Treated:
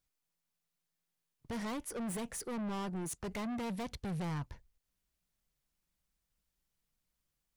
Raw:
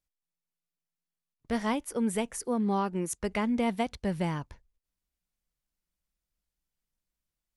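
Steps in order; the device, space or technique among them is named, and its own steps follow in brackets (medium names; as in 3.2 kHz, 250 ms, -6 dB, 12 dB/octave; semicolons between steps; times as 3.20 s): open-reel tape (saturation -38.5 dBFS, distortion -5 dB; peaking EQ 130 Hz +4.5 dB 1.14 oct; white noise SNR 48 dB); trim +1 dB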